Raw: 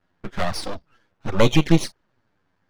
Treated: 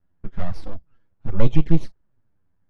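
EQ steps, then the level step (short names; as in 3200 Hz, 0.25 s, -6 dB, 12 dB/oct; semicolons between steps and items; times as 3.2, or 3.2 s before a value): RIAA curve playback; -11.5 dB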